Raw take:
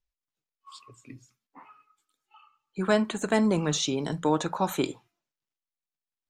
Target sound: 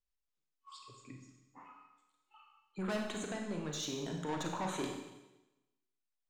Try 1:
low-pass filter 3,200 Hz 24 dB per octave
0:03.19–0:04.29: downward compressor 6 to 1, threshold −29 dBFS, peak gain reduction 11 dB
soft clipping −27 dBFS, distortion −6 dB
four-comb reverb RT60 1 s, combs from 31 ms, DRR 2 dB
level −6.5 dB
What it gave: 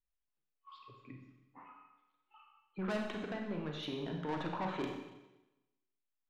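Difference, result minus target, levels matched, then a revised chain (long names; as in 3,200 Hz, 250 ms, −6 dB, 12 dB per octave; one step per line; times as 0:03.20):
8,000 Hz band −18.0 dB
low-pass filter 9,000 Hz 24 dB per octave
0:03.19–0:04.29: downward compressor 6 to 1, threshold −29 dBFS, peak gain reduction 11 dB
soft clipping −27 dBFS, distortion −6 dB
four-comb reverb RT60 1 s, combs from 31 ms, DRR 2 dB
level −6.5 dB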